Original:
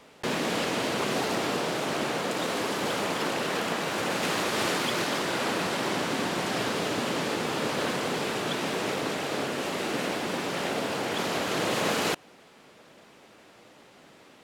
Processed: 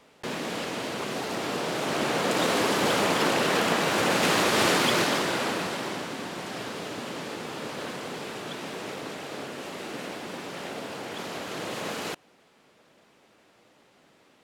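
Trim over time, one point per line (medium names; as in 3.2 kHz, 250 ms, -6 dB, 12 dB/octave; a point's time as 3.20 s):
1.22 s -4 dB
2.40 s +5 dB
4.95 s +5 dB
6.16 s -6.5 dB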